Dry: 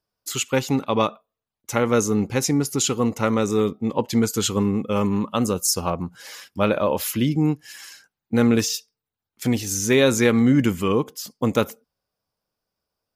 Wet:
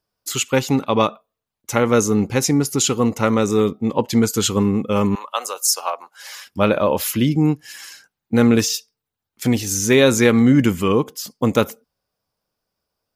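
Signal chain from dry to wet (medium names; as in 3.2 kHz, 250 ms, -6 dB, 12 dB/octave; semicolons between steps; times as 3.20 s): 5.15–6.47 s: high-pass 630 Hz 24 dB/octave; trim +3.5 dB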